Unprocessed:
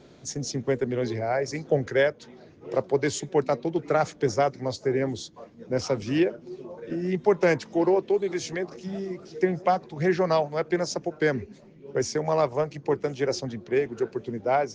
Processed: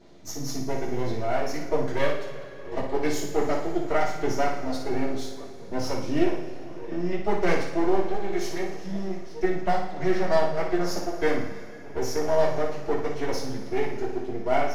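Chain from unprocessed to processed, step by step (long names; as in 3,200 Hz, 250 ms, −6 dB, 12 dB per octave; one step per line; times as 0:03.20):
gain on one half-wave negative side −12 dB
flutter between parallel walls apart 9.8 metres, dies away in 0.55 s
coupled-rooms reverb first 0.2 s, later 3.3 s, from −22 dB, DRR −6.5 dB
level −6.5 dB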